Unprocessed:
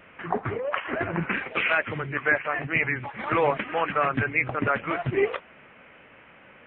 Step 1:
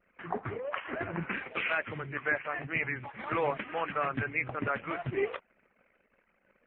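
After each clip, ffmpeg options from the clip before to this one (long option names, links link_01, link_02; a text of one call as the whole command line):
ffmpeg -i in.wav -af "anlmdn=0.0251,volume=-7.5dB" out.wav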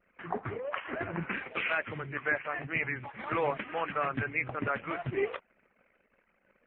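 ffmpeg -i in.wav -af anull out.wav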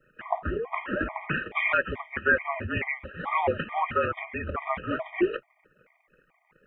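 ffmpeg -i in.wav -af "afreqshift=-48,afftfilt=real='re*gt(sin(2*PI*2.3*pts/sr)*(1-2*mod(floor(b*sr/1024/620),2)),0)':imag='im*gt(sin(2*PI*2.3*pts/sr)*(1-2*mod(floor(b*sr/1024/620),2)),0)':win_size=1024:overlap=0.75,volume=8.5dB" out.wav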